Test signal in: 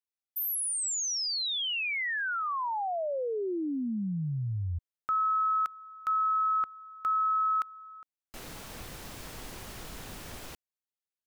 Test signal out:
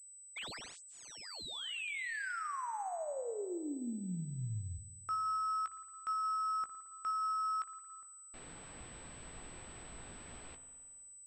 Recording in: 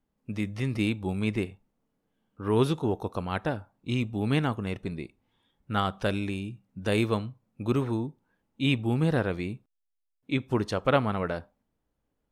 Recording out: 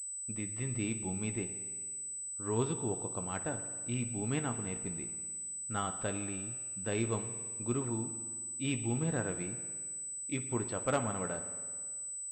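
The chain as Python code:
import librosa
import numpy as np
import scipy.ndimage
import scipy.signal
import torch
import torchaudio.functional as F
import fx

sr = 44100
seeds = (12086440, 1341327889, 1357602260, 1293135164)

y = fx.doubler(x, sr, ms=17.0, db=-10.5)
y = fx.rev_spring(y, sr, rt60_s=1.7, pass_ms=(54,), chirp_ms=70, drr_db=10.0)
y = fx.pwm(y, sr, carrier_hz=8000.0)
y = y * librosa.db_to_amplitude(-9.0)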